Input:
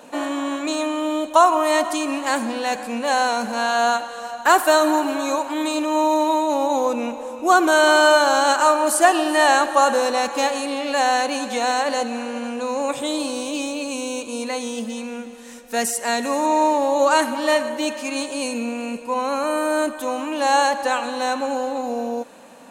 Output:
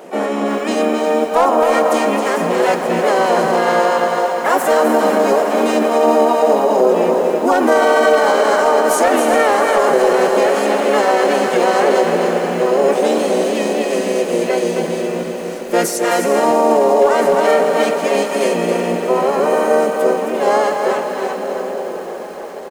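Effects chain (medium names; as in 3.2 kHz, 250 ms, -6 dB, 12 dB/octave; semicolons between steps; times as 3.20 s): fade out at the end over 3.85 s; flange 0.37 Hz, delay 6.9 ms, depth 9.7 ms, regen -63%; graphic EQ 125/500/2000/4000/8000 Hz -6/+11/+4/-6/-4 dB; echo that smears into a reverb 466 ms, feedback 79%, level -14 dB; hard clipper -6 dBFS, distortion -28 dB; treble shelf 2.6 kHz +5 dB; feedback delay 266 ms, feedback 16%, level -7 dB; peak limiter -10.5 dBFS, peak gain reduction 9 dB; harmony voices -5 st -1 dB, +4 st -8 dB; bit-crushed delay 348 ms, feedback 55%, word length 6-bit, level -13 dB; trim +2.5 dB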